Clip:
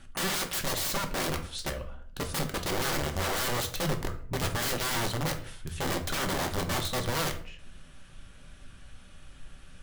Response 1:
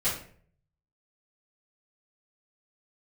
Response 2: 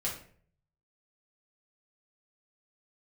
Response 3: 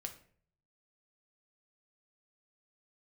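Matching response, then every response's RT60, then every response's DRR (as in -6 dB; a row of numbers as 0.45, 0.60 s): 3; 0.50, 0.50, 0.50 s; -13.0, -5.0, 4.5 dB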